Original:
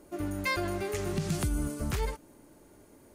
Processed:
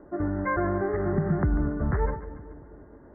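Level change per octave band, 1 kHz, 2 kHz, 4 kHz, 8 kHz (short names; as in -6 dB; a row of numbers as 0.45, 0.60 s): +6.5 dB, +1.0 dB, under -40 dB, under -40 dB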